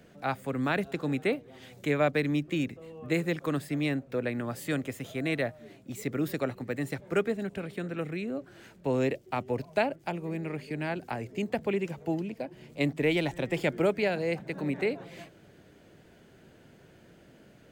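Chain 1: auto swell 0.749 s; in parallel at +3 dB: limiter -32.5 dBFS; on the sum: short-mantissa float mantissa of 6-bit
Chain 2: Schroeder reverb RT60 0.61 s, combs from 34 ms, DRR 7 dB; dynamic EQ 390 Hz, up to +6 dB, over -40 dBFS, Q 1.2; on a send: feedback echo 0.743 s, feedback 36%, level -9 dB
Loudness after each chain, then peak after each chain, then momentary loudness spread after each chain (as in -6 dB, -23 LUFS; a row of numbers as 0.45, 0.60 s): -36.0, -27.0 LUFS; -18.0, -9.0 dBFS; 18, 11 LU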